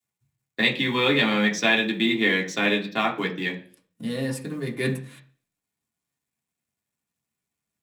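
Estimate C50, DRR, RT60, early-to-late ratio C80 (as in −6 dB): 13.0 dB, −1.5 dB, 0.45 s, 17.5 dB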